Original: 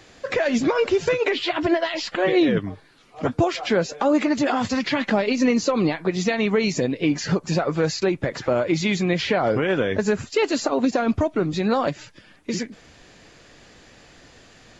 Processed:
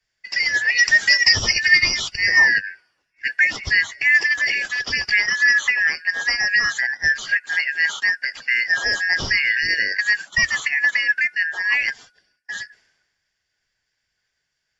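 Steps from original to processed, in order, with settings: four frequency bands reordered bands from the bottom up 3142; 0.76–2.08 s: treble shelf 4.4 kHz -> 3.4 kHz +7.5 dB; three bands expanded up and down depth 100%; trim +1.5 dB

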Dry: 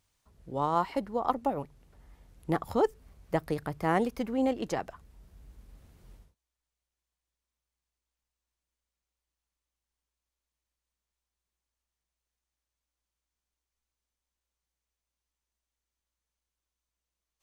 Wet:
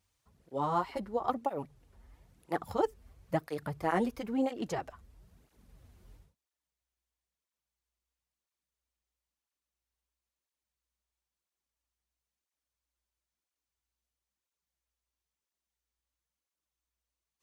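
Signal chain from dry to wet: cancelling through-zero flanger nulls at 1 Hz, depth 7.4 ms

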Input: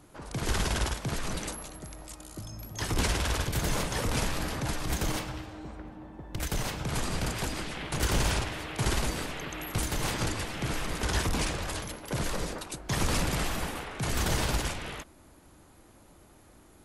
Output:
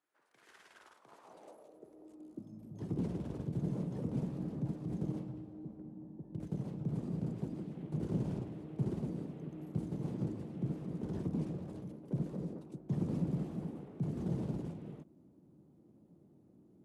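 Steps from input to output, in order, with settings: CVSD coder 64 kbps; treble shelf 5.2 kHz -9 dB; high-pass sweep 1.7 kHz -> 160 Hz, 0.70–2.74 s; FFT filter 360 Hz 0 dB, 1.6 kHz -24 dB, 5.2 kHz -23 dB, 9.2 kHz -20 dB; trim -6 dB

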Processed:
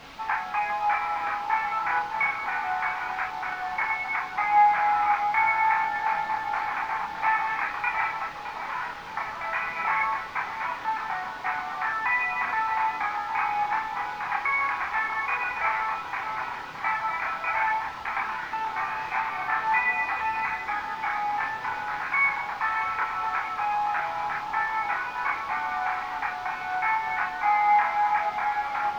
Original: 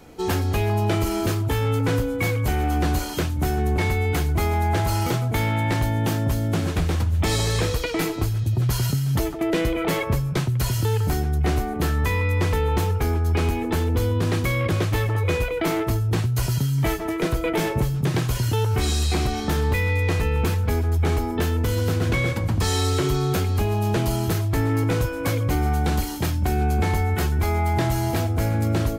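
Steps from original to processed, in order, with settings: Chebyshev band-pass 800–2400 Hz, order 4; in parallel at -3.5 dB: word length cut 6-bit, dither triangular; on the sum: tape echo 617 ms, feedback 85%, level -5 dB, low-pass 1.1 kHz; chorus voices 4, 0.19 Hz, delay 29 ms, depth 4 ms; distance through air 260 m; trim +6 dB

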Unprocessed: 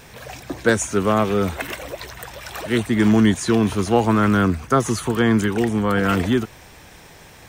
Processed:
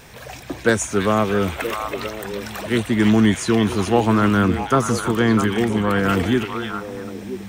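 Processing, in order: repeats whose band climbs or falls 325 ms, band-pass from 2.8 kHz, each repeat -1.4 oct, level -2 dB

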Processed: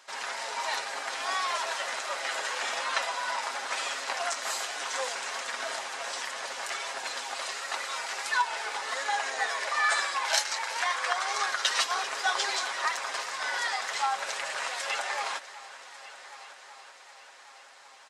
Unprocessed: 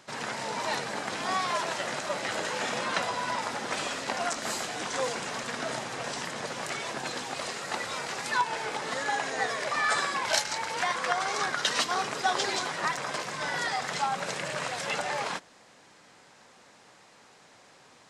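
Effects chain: high-pass 740 Hz 12 dB/octave; comb 7.4 ms, depth 49%; multi-head delay 382 ms, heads first and third, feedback 65%, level -18.5 dB

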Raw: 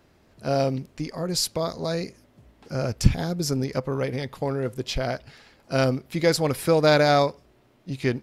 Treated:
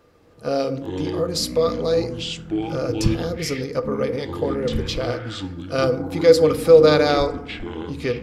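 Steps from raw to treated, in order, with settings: dynamic bell 3.7 kHz, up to +6 dB, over -42 dBFS, Q 1.1; in parallel at -2.5 dB: compression, threshold -30 dBFS, peak gain reduction 19 dB; on the sum: small resonant body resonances 480/1200 Hz, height 16 dB, ringing for 75 ms; ever faster or slower copies 169 ms, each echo -7 st, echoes 3, each echo -6 dB; FDN reverb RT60 0.93 s, low-frequency decay 1.4×, high-frequency decay 0.35×, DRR 9.5 dB; trim -5 dB

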